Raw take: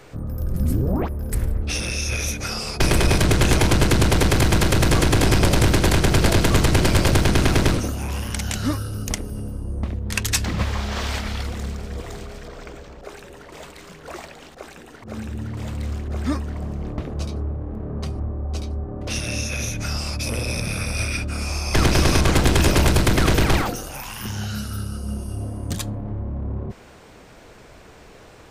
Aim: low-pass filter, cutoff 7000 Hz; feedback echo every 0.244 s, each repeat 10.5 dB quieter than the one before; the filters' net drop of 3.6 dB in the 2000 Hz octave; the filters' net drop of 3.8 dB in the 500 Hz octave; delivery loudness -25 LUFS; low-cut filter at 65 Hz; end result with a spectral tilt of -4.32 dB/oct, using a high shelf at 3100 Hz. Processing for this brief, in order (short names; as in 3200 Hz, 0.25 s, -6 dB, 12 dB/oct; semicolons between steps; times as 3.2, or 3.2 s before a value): HPF 65 Hz; LPF 7000 Hz; bell 500 Hz -5 dB; bell 2000 Hz -6.5 dB; high shelf 3100 Hz +5 dB; feedback echo 0.244 s, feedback 30%, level -10.5 dB; gain -2 dB